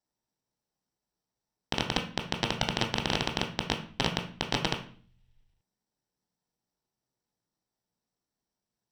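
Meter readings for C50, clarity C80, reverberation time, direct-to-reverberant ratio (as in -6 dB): 9.5 dB, 14.5 dB, 0.45 s, 3.0 dB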